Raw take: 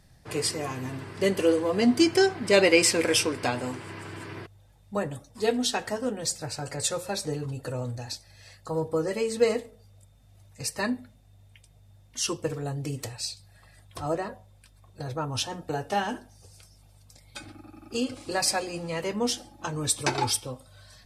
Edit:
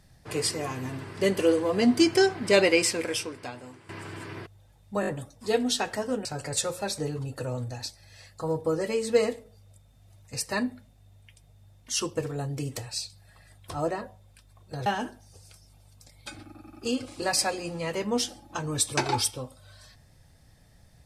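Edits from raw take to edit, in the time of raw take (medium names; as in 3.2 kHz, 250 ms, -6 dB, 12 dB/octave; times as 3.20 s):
2.51–3.89 s: fade out quadratic, to -13.5 dB
5.01 s: stutter 0.02 s, 4 plays
6.19–6.52 s: delete
15.13–15.95 s: delete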